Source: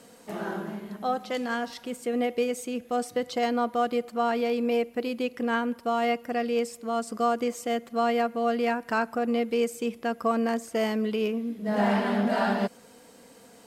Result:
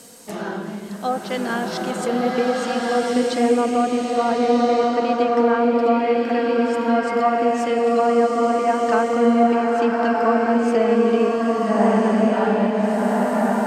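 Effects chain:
treble cut that deepens with the level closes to 1,400 Hz, closed at −22.5 dBFS
bass and treble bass +1 dB, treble +10 dB
slow-attack reverb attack 1,450 ms, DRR −3 dB
level +4.5 dB

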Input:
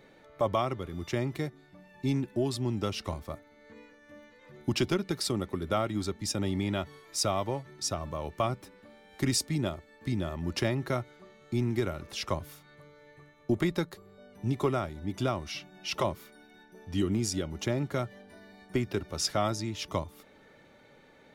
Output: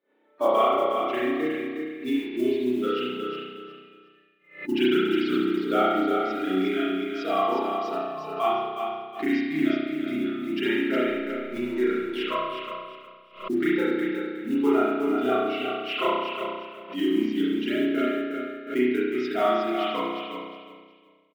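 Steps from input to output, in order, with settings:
spectral magnitudes quantised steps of 15 dB
noise reduction from a noise print of the clip's start 24 dB
downward expander −57 dBFS
elliptic band-pass filter 270–3,300 Hz, stop band 50 dB
transient designer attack 0 dB, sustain −4 dB
noise that follows the level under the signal 26 dB
0:10.94–0:13.57: slack as between gear wheels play −48 dBFS
repeating echo 362 ms, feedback 26%, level −6 dB
spring reverb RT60 1.2 s, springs 32 ms, chirp 55 ms, DRR −8.5 dB
background raised ahead of every attack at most 140 dB per second
level +1 dB

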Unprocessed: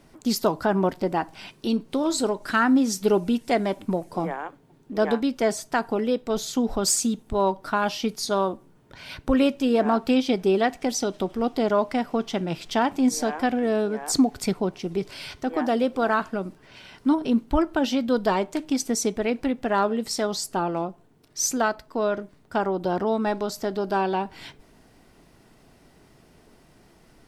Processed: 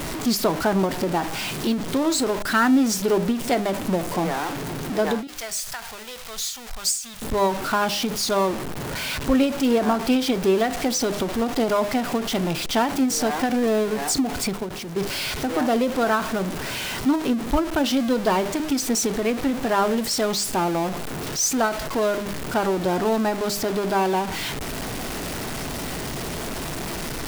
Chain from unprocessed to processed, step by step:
converter with a step at zero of −24 dBFS
0:05.27–0:07.22: guitar amp tone stack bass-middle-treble 10-0-10
hum removal 101.3 Hz, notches 8
0:14.56–0:14.99: output level in coarse steps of 11 dB
every ending faded ahead of time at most 110 dB per second

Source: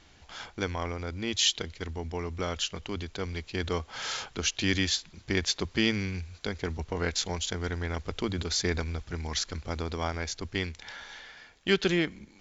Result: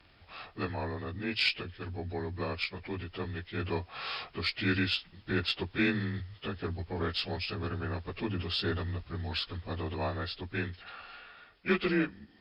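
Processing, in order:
partials spread apart or drawn together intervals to 90%
harmonic generator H 2 −23 dB, 3 −30 dB, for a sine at −14.5 dBFS

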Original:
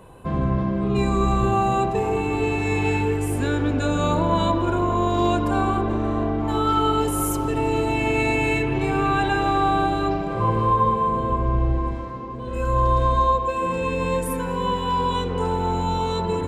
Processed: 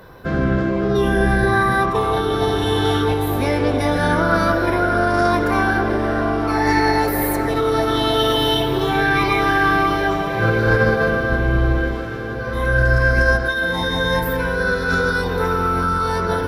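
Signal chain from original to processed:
formants moved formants +6 semitones
feedback delay with all-pass diffusion 1,273 ms, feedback 43%, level −13 dB
level +3.5 dB

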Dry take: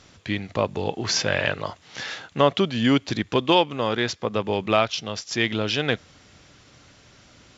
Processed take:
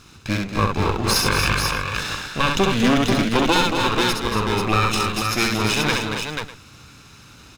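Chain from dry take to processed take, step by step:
lower of the sound and its delayed copy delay 0.78 ms
multi-tap delay 66/231/273/487/598 ms −4/−8/−9/−5.5/−18.5 dB
boost into a limiter +10.5 dB
level −5.5 dB

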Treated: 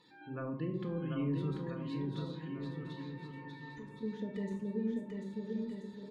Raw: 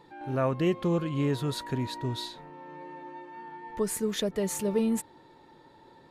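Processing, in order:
high-pass filter 110 Hz 6 dB per octave
first-order pre-emphasis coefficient 0.8
gate on every frequency bin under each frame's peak −25 dB strong
treble cut that deepens with the level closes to 670 Hz, closed at −36.5 dBFS
parametric band 690 Hz −11.5 dB 1.2 octaves
0:01.50–0:04.03: downward compressor 3 to 1, threshold −59 dBFS, peak gain reduction 13 dB
bouncing-ball delay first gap 740 ms, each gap 0.8×, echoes 5
convolution reverb RT60 0.55 s, pre-delay 4 ms, DRR 2 dB
level +6 dB

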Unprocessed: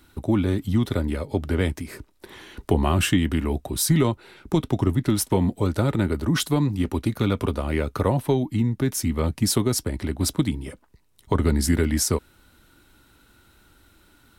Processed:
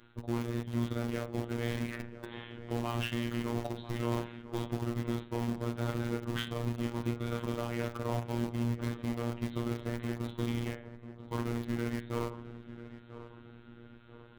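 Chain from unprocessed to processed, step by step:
peak hold with a decay on every bin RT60 0.48 s
reversed playback
downward compressor 16 to 1, threshold −28 dBFS, peak gain reduction 16 dB
reversed playback
downsampling to 8,000 Hz
in parallel at −8 dB: bit reduction 5 bits
on the sum: amplitude modulation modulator 170 Hz, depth 40%
feedback echo with a low-pass in the loop 993 ms, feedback 49%, low-pass 1,700 Hz, level −13 dB
phases set to zero 118 Hz

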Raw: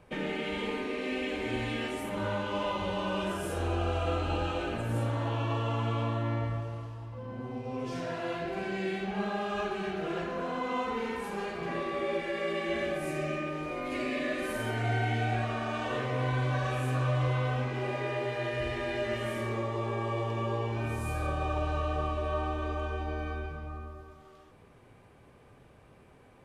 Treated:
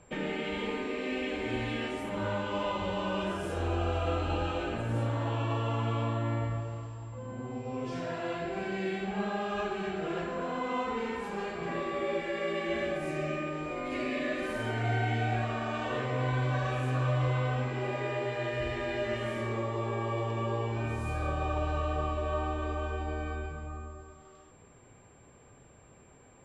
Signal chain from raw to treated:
steady tone 7,400 Hz −59 dBFS
high-frequency loss of the air 57 metres

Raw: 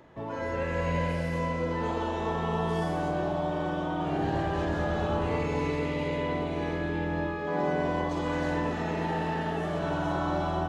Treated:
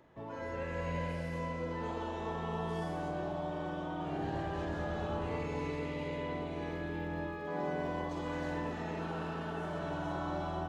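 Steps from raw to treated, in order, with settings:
0:06.68–0:08.71: surface crackle 240 per second −52 dBFS
0:09.01–0:09.82: healed spectral selection 880–2,200 Hz after
level −8 dB

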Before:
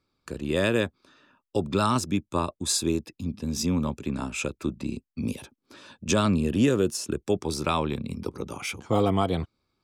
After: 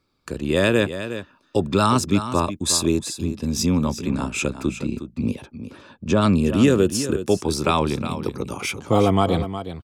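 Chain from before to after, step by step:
0:04.80–0:06.21: low-pass filter 3,200 Hz → 1,200 Hz 6 dB per octave
single-tap delay 362 ms −11 dB
level +5.5 dB

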